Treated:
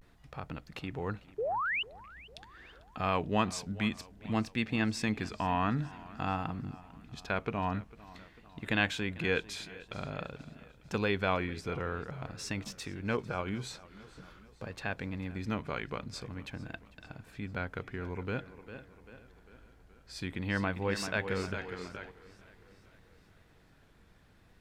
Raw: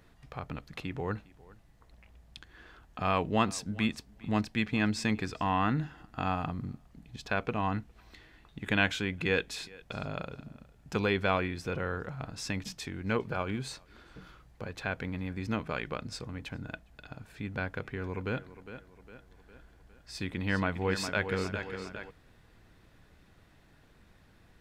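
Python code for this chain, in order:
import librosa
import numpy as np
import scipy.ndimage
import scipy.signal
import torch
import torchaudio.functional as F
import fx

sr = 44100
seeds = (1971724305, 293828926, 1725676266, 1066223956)

y = fx.vibrato(x, sr, rate_hz=0.49, depth_cents=77.0)
y = fx.spec_paint(y, sr, seeds[0], shape='rise', start_s=1.38, length_s=0.45, low_hz=400.0, high_hz=3100.0, level_db=-30.0)
y = fx.echo_warbled(y, sr, ms=447, feedback_pct=55, rate_hz=2.8, cents=68, wet_db=-20.0)
y = F.gain(torch.from_numpy(y), -2.0).numpy()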